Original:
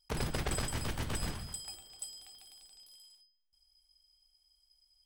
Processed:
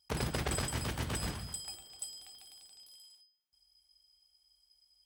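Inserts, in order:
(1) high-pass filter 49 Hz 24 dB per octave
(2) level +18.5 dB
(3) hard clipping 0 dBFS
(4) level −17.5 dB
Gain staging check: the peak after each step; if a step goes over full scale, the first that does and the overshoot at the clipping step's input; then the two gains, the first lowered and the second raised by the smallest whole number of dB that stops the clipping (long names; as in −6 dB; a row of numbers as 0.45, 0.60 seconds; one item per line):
−22.5, −4.0, −4.0, −21.5 dBFS
no step passes full scale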